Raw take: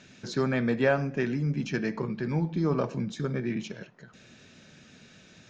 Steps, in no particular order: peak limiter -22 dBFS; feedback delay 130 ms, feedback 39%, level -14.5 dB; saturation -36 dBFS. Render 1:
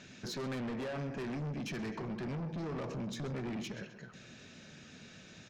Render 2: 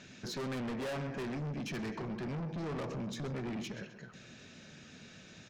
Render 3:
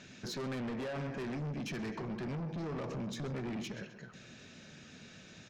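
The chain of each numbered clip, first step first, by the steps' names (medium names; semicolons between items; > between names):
peak limiter > feedback delay > saturation; feedback delay > saturation > peak limiter; feedback delay > peak limiter > saturation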